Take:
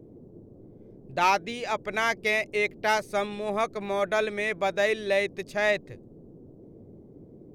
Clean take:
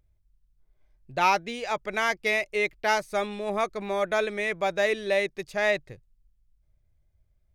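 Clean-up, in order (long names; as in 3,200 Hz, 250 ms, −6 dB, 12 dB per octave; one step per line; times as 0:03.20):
clipped peaks rebuilt −13.5 dBFS
noise reduction from a noise print 16 dB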